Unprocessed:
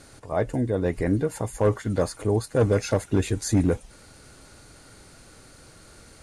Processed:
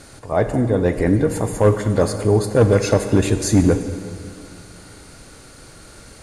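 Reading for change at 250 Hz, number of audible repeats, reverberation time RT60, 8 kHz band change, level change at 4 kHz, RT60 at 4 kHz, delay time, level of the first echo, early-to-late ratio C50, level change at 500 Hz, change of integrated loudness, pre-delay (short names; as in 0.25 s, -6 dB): +7.5 dB, none, 2.4 s, +7.0 dB, +7.0 dB, 2.0 s, none, none, 9.0 dB, +7.0 dB, +7.0 dB, 28 ms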